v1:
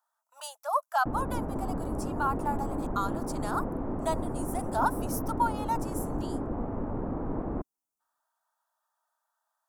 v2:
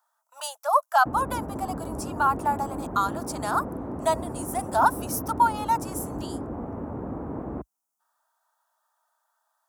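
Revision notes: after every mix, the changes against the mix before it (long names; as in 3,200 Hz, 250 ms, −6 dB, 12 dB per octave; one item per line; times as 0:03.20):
speech +7.0 dB
master: add high-pass filter 54 Hz 24 dB per octave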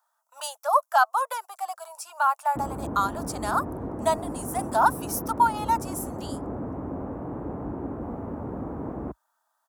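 background: entry +1.50 s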